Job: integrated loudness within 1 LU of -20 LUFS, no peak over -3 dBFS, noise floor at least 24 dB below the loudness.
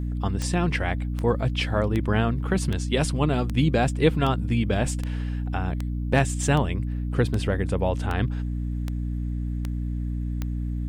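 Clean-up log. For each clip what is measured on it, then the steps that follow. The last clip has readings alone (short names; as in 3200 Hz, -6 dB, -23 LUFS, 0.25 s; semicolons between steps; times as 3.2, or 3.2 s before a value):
clicks 14; hum 60 Hz; harmonics up to 300 Hz; hum level -26 dBFS; loudness -25.5 LUFS; peak -5.5 dBFS; loudness target -20.0 LUFS
-> de-click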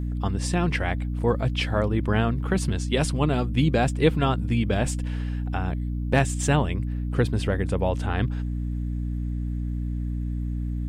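clicks 0; hum 60 Hz; harmonics up to 300 Hz; hum level -26 dBFS
-> notches 60/120/180/240/300 Hz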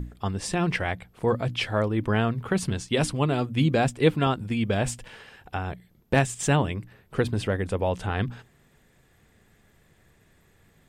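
hum none; loudness -26.5 LUFS; peak -6.5 dBFS; loudness target -20.0 LUFS
-> gain +6.5 dB; limiter -3 dBFS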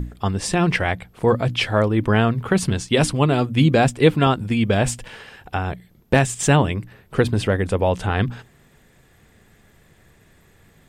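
loudness -20.0 LUFS; peak -3.0 dBFS; noise floor -55 dBFS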